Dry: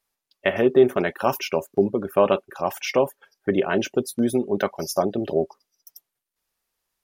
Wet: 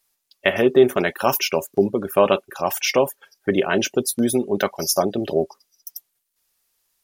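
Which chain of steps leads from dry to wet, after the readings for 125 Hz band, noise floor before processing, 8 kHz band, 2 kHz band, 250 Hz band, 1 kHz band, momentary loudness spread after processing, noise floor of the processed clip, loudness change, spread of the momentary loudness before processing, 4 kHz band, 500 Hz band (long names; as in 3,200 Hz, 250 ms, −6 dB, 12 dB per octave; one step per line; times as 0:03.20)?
+1.5 dB, −84 dBFS, +10.0 dB, +4.5 dB, +1.5 dB, +2.5 dB, 10 LU, −74 dBFS, +2.5 dB, 8 LU, +7.5 dB, +1.5 dB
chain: high-shelf EQ 3,000 Hz +10 dB
level +1.5 dB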